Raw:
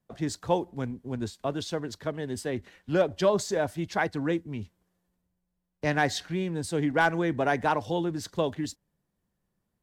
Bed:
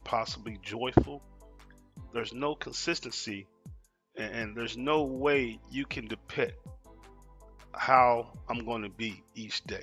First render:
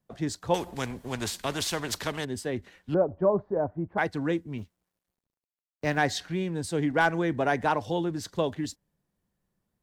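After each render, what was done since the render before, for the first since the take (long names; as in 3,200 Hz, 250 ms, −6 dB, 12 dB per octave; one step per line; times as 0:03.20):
0:00.54–0:02.25: every bin compressed towards the loudest bin 2 to 1
0:02.94–0:03.98: low-pass filter 1,100 Hz 24 dB per octave
0:04.58–0:05.98: mu-law and A-law mismatch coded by A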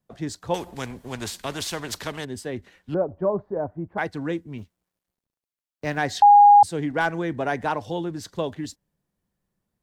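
0:06.22–0:06.63: beep over 820 Hz −8 dBFS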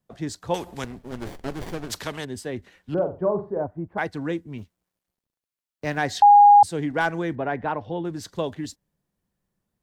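0:00.84–0:01.90: windowed peak hold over 33 samples
0:02.93–0:03.64: flutter between parallel walls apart 7.7 metres, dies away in 0.31 s
0:07.35–0:08.05: high-frequency loss of the air 360 metres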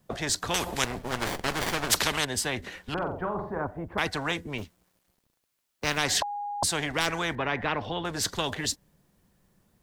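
every bin compressed towards the loudest bin 4 to 1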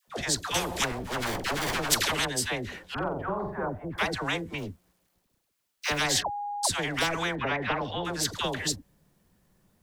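all-pass dispersion lows, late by 80 ms, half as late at 720 Hz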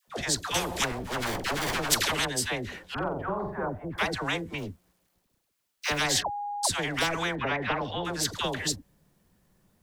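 no processing that can be heard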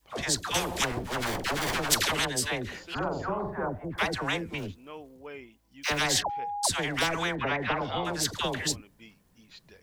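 mix in bed −16.5 dB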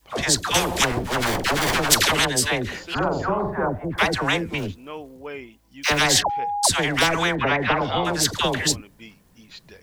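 level +8 dB
brickwall limiter −1 dBFS, peak gain reduction 1 dB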